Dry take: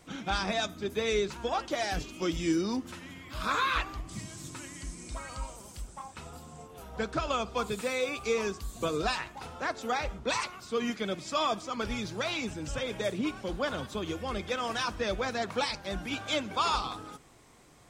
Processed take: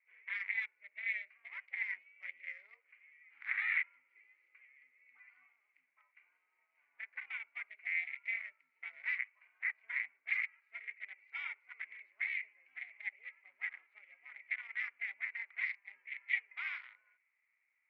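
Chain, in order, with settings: local Wiener filter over 25 samples; ring modulator 210 Hz; Butterworth band-pass 2.1 kHz, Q 6.1; trim +13 dB

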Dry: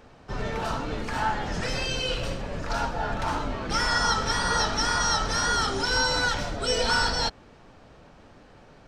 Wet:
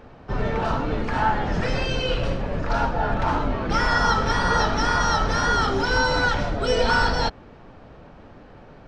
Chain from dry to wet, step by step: tape spacing loss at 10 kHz 21 dB; trim +7 dB

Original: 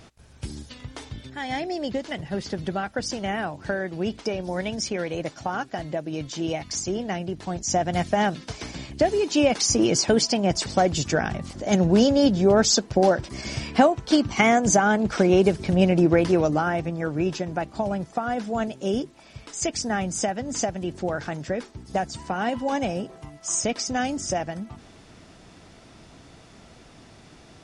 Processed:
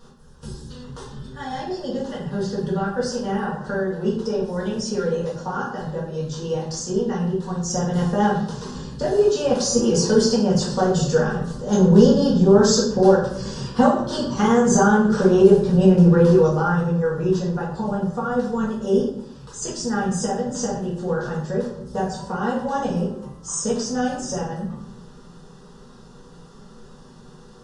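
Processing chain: treble shelf 5 kHz -6 dB; static phaser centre 450 Hz, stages 8; simulated room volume 150 m³, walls mixed, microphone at 1.8 m; trim -1 dB

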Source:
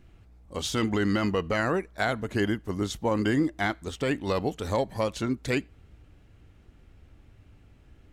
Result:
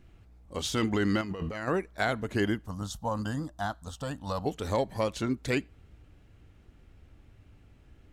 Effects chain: 1.21–1.68 s: compressor with a negative ratio -34 dBFS, ratio -1; 2.66–4.46 s: static phaser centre 900 Hz, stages 4; trim -1.5 dB

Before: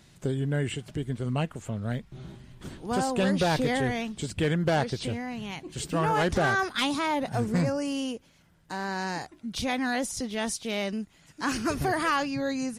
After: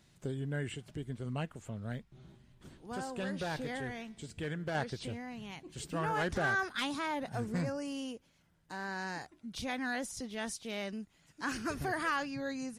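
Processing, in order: dynamic bell 1.6 kHz, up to +5 dB, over -43 dBFS, Q 2.8; 2.03–4.75 s: feedback comb 75 Hz, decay 1.1 s, harmonics all, mix 40%; trim -9 dB

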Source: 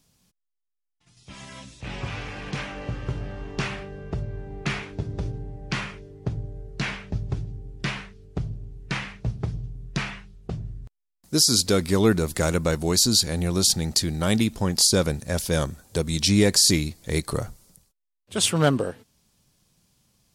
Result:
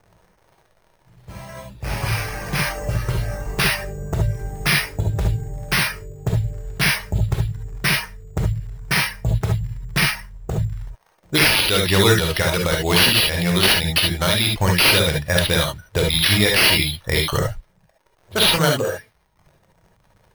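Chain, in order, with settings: crackle 130 per s -37 dBFS; level-controlled noise filter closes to 680 Hz, open at -17 dBFS; graphic EQ 250/2000/4000 Hz -11/+5/+11 dB; in parallel at +3 dB: compression, threshold -28 dBFS, peak gain reduction 19.5 dB; on the sum: peak limiter -8.5 dBFS, peak gain reduction 11 dB; reverb removal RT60 0.76 s; careless resampling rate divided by 6×, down none, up hold; gated-style reverb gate 90 ms rising, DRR 0.5 dB; trim +1.5 dB

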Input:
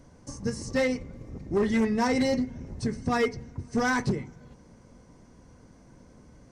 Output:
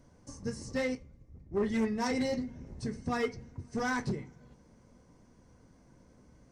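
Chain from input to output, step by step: flange 0.56 Hz, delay 8.4 ms, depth 8.2 ms, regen -65%; 0.95–2.11 s: three bands expanded up and down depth 70%; trim -2.5 dB

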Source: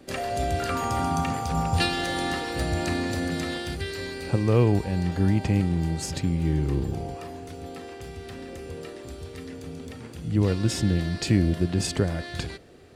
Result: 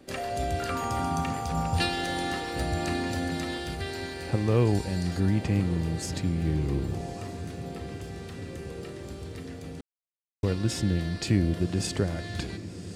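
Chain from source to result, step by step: 4.65–5.20 s: high-order bell 7.1 kHz +8.5 dB; echo that smears into a reverb 1155 ms, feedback 68%, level -14 dB; 9.81–10.43 s: mute; trim -3 dB

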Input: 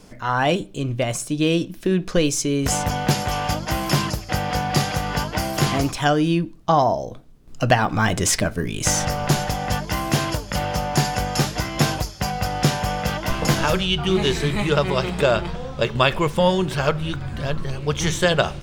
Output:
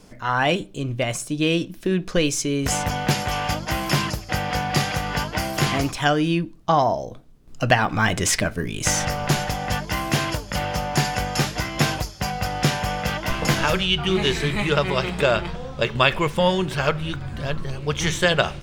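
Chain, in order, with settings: dynamic bell 2.2 kHz, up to +5 dB, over -34 dBFS, Q 1; trim -2 dB

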